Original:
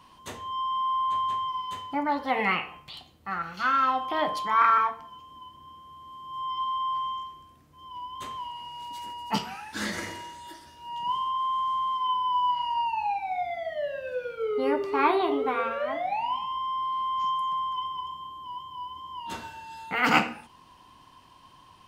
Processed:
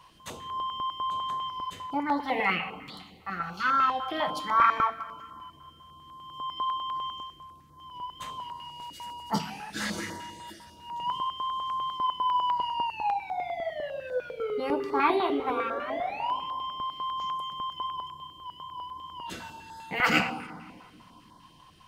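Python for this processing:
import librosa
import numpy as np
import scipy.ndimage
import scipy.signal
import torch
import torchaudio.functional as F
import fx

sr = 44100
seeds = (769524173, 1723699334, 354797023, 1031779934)

y = fx.room_shoebox(x, sr, seeds[0], volume_m3=3300.0, walls='mixed', distance_m=0.71)
y = fx.filter_held_notch(y, sr, hz=10.0, low_hz=250.0, high_hz=2600.0)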